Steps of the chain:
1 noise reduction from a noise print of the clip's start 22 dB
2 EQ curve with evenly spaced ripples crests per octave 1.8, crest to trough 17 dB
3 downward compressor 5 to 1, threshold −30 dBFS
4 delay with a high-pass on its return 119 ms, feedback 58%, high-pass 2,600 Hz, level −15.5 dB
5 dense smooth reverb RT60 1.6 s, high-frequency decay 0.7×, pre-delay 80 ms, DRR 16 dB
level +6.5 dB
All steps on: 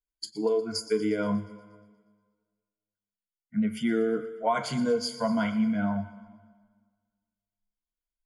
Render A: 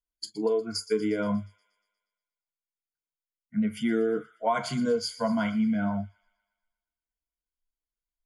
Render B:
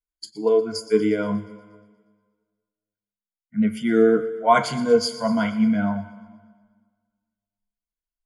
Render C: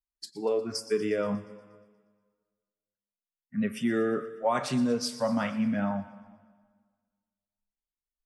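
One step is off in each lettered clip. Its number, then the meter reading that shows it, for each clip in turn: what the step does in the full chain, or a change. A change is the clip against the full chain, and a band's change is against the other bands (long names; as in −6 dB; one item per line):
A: 5, echo-to-direct ratio −14.5 dB to −21.0 dB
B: 3, change in crest factor +4.0 dB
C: 2, 8 kHz band +2.5 dB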